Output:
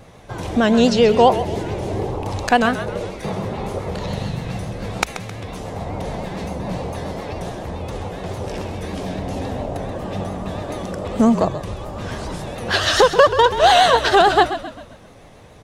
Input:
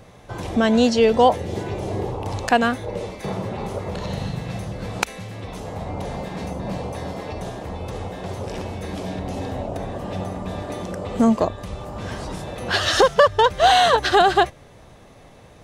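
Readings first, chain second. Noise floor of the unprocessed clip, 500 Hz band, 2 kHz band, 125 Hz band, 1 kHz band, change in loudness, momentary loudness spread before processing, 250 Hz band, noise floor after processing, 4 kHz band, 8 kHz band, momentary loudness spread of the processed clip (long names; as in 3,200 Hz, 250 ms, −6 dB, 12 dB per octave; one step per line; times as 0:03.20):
−47 dBFS, +2.5 dB, +2.5 dB, +2.5 dB, +2.0 dB, +2.5 dB, 16 LU, +2.5 dB, −44 dBFS, +2.5 dB, +2.0 dB, 16 LU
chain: pitch vibrato 7.1 Hz 78 cents
on a send: echo with shifted repeats 132 ms, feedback 45%, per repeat −42 Hz, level −11.5 dB
on the sum: level +2 dB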